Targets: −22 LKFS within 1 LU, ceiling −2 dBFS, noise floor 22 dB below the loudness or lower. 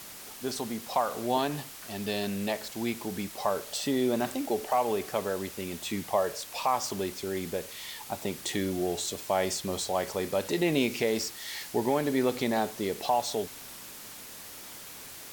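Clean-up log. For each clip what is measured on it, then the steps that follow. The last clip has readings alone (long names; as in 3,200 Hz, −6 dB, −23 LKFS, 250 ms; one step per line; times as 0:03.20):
background noise floor −45 dBFS; target noise floor −53 dBFS; integrated loudness −30.5 LKFS; sample peak −14.5 dBFS; target loudness −22.0 LKFS
→ broadband denoise 8 dB, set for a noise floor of −45 dBFS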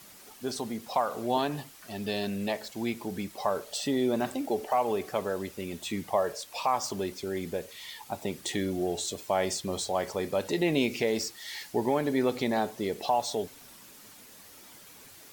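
background noise floor −52 dBFS; target noise floor −53 dBFS
→ broadband denoise 6 dB, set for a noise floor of −52 dBFS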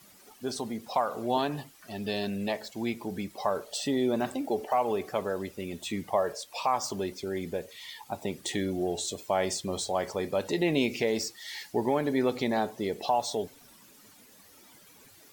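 background noise floor −56 dBFS; integrated loudness −31.0 LKFS; sample peak −14.5 dBFS; target loudness −22.0 LKFS
→ level +9 dB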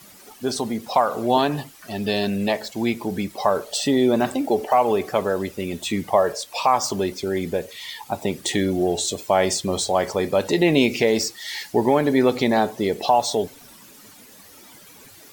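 integrated loudness −22.0 LKFS; sample peak −5.5 dBFS; background noise floor −47 dBFS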